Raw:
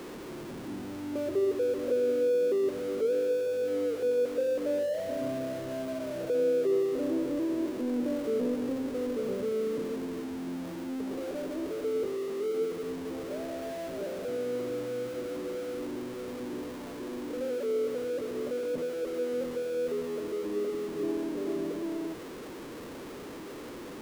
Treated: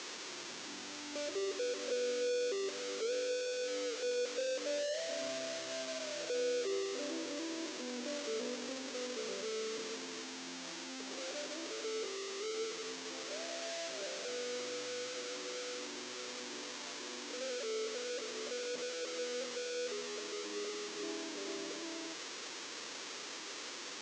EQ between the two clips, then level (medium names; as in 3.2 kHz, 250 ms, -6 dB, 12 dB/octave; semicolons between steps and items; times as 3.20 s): steep low-pass 6.9 kHz 48 dB/octave; differentiator; +14.0 dB